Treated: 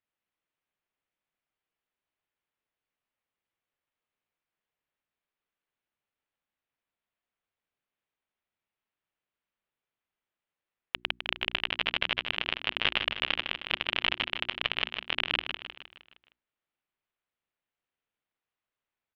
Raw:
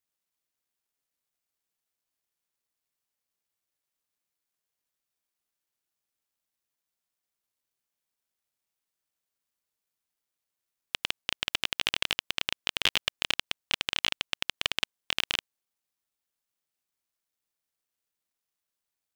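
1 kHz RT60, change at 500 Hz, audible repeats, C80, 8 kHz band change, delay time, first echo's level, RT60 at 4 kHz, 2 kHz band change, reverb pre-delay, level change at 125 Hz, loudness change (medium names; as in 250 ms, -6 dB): no reverb, +2.5 dB, 5, no reverb, under -20 dB, 155 ms, -7.0 dB, no reverb, +2.0 dB, no reverb, +2.0 dB, 0.0 dB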